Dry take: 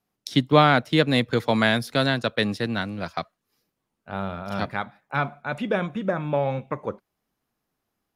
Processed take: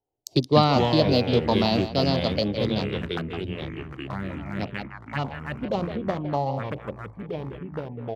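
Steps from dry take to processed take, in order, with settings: local Wiener filter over 25 samples; speakerphone echo 160 ms, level -10 dB; touch-sensitive phaser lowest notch 200 Hz, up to 1.6 kHz, full sweep at -22.5 dBFS; ever faster or slower copies 104 ms, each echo -4 st, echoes 3, each echo -6 dB; formant shift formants +3 st

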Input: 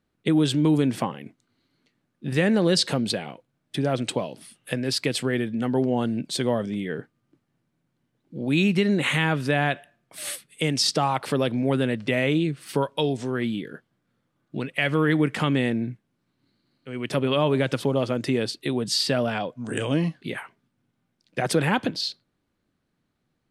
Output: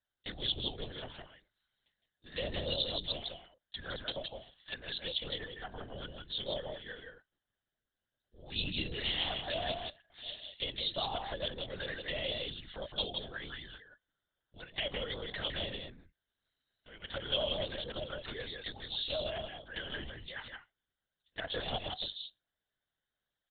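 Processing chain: tilt EQ +4 dB/octave; touch-sensitive flanger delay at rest 7.1 ms, full sweep at -21.5 dBFS; static phaser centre 1.6 kHz, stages 8; feedback comb 190 Hz, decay 0.18 s, harmonics all, mix 40%; delay 166 ms -4.5 dB; LPC vocoder at 8 kHz whisper; trim -3.5 dB

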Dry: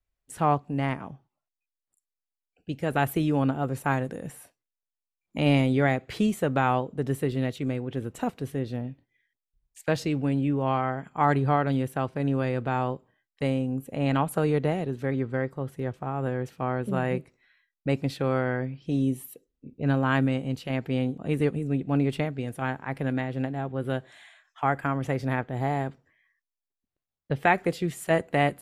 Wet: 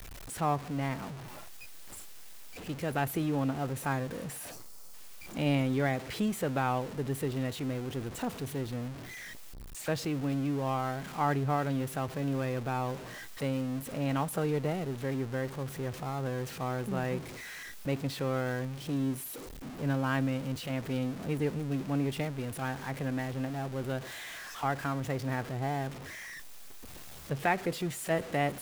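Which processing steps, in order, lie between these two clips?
jump at every zero crossing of -30.5 dBFS; time-frequency box 4.51–4.94 s, 1.4–4.1 kHz -8 dB; trim -7.5 dB

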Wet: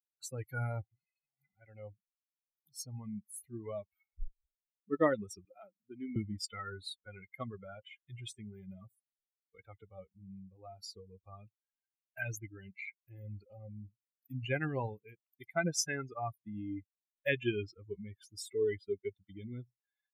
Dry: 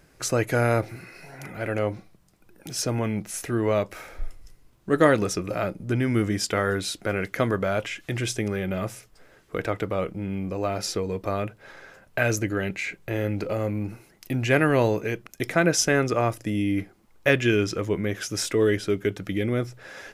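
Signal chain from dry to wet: expander on every frequency bin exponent 3; 5.45–6.16 s: high-pass 270 Hz 24 dB/octave; trim -6.5 dB

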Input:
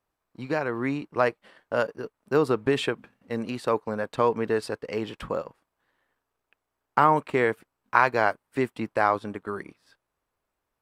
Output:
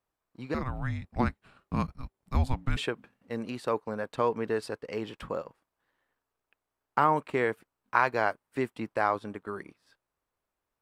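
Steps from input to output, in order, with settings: 0.54–2.77 s: frequency shift -390 Hz; trim -4.5 dB

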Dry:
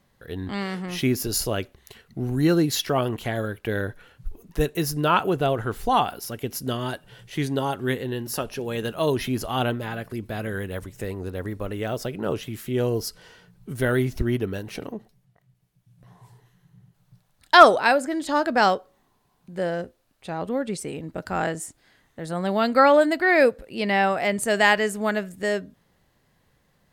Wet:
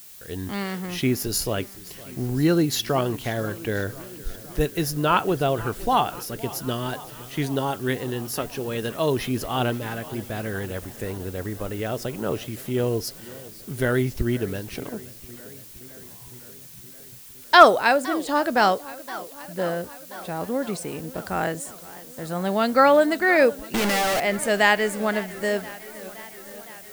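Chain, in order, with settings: 23.74–24.20 s: one-bit comparator; added noise blue -45 dBFS; modulated delay 515 ms, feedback 71%, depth 167 cents, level -19 dB

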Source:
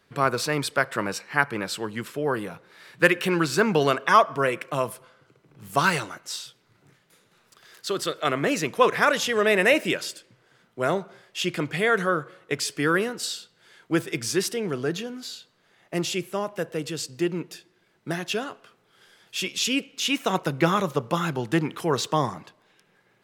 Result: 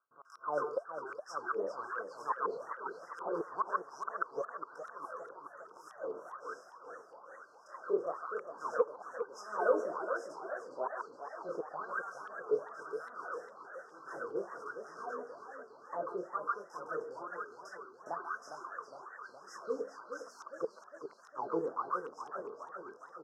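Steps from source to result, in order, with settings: spectral levelling over time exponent 0.6; chorus 0.2 Hz, delay 19 ms, depth 7.2 ms; FFT band-reject 1.6–5 kHz; gate with hold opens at -35 dBFS; peaking EQ 1.2 kHz +9.5 dB 0.51 oct; de-hum 69.05 Hz, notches 8; inverted gate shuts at -7 dBFS, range -29 dB; wah-wah 1.1 Hz 430–4000 Hz, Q 12; bands offset in time lows, highs 140 ms, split 1.1 kHz; modulated delay 411 ms, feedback 63%, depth 185 cents, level -9 dB; trim +3 dB

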